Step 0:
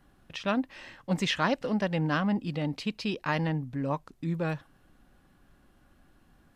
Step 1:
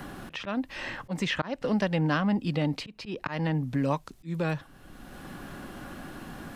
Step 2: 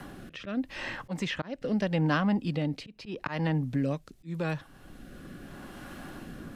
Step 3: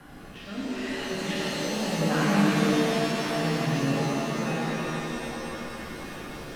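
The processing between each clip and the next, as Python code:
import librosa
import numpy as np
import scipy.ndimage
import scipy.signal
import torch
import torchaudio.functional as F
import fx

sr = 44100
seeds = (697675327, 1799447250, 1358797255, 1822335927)

y1 = fx.auto_swell(x, sr, attack_ms=374.0)
y1 = fx.band_squash(y1, sr, depth_pct=70)
y1 = y1 * librosa.db_to_amplitude(4.5)
y2 = fx.rotary(y1, sr, hz=0.8)
y3 = fx.rev_shimmer(y2, sr, seeds[0], rt60_s=3.5, semitones=7, shimmer_db=-2, drr_db=-8.5)
y3 = y3 * librosa.db_to_amplitude(-7.0)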